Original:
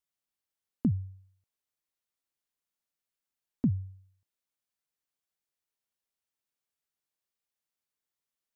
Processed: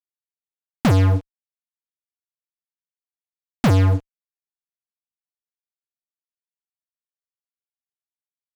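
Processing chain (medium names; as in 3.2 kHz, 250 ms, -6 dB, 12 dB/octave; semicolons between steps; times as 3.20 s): level-controlled noise filter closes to 560 Hz, open at -31.5 dBFS; fuzz box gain 56 dB, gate -54 dBFS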